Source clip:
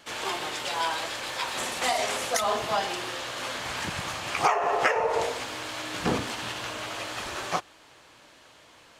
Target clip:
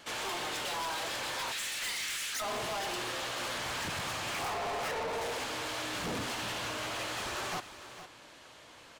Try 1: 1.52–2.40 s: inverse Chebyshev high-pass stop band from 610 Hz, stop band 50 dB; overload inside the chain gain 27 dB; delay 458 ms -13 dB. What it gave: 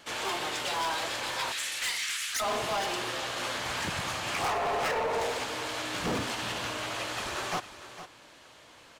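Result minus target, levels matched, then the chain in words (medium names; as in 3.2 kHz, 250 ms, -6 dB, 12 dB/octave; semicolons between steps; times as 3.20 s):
overload inside the chain: distortion -4 dB
1.52–2.40 s: inverse Chebyshev high-pass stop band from 610 Hz, stop band 50 dB; overload inside the chain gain 34 dB; delay 458 ms -13 dB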